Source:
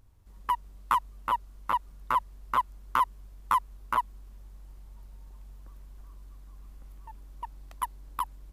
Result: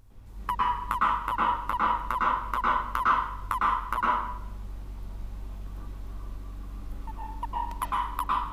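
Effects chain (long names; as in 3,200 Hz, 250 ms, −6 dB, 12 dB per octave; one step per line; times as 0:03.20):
downward compressor 6 to 1, threshold −31 dBFS, peak gain reduction 11.5 dB
convolution reverb RT60 0.80 s, pre-delay 101 ms, DRR −7.5 dB
level +4 dB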